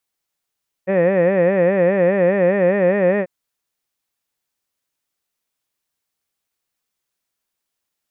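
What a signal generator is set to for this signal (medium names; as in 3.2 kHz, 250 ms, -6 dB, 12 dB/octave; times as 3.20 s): formant-synthesis vowel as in head, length 2.39 s, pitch 181 Hz, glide +1 st, vibrato 4.9 Hz, vibrato depth 1.4 st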